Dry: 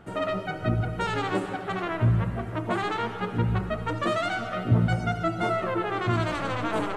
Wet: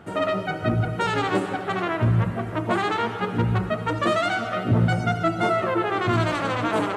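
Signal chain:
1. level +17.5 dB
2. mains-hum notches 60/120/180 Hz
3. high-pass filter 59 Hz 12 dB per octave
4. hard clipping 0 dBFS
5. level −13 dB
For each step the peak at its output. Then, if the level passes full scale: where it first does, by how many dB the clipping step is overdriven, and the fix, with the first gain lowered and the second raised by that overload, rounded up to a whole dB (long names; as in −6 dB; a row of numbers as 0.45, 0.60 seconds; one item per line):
+7.5, +5.5, +5.5, 0.0, −13.0 dBFS
step 1, 5.5 dB
step 1 +11.5 dB, step 5 −7 dB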